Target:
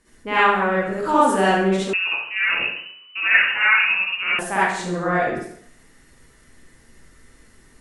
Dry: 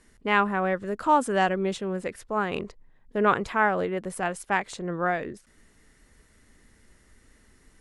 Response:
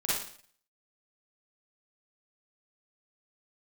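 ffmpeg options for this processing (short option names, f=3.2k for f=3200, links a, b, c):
-filter_complex "[1:a]atrim=start_sample=2205,asetrate=36162,aresample=44100[a];[0:a][a]afir=irnorm=-1:irlink=0,asettb=1/sr,asplit=3[b][c][d];[b]atrim=end=1.934[e];[c]atrim=start=1.93:end=4.39,asetpts=PTS-STARTPTS,afade=t=in:d=0.004:c=qsin,afade=t=out:st=2.456:d=0.004:c=qsin,lowpass=f=2.6k:t=q:w=0.5098,lowpass=f=2.6k:t=q:w=0.6013,lowpass=f=2.6k:t=q:w=0.9,lowpass=f=2.6k:t=q:w=2.563,afreqshift=-3000[f];[d]atrim=start=4.386[g];[e][f]acrossfade=d=0.004:c1=hsin:c2=qsin[h];[h][g]acrossfade=d=0.004:c1=qsin:c2=hsin,volume=-2dB"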